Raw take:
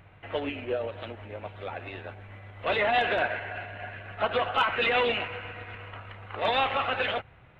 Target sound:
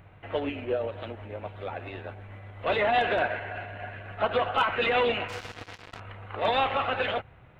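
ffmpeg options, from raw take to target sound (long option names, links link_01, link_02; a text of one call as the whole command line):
ffmpeg -i in.wav -filter_complex "[0:a]equalizer=frequency=2600:width=0.6:gain=-4,asplit=3[link_01][link_02][link_03];[link_01]afade=type=out:start_time=5.28:duration=0.02[link_04];[link_02]acrusher=bits=5:mix=0:aa=0.5,afade=type=in:start_time=5.28:duration=0.02,afade=type=out:start_time=5.99:duration=0.02[link_05];[link_03]afade=type=in:start_time=5.99:duration=0.02[link_06];[link_04][link_05][link_06]amix=inputs=3:normalize=0,volume=2dB" out.wav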